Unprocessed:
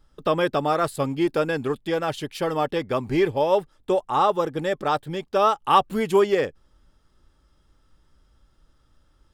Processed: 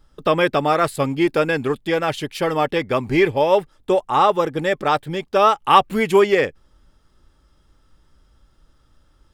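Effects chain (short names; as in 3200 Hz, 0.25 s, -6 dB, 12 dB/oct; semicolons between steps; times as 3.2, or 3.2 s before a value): dynamic EQ 2200 Hz, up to +7 dB, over -43 dBFS, Q 2.2; gain +4 dB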